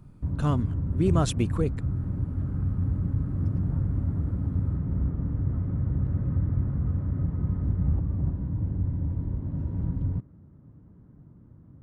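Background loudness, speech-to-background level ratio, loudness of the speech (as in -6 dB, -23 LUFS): -29.0 LUFS, 0.5 dB, -28.5 LUFS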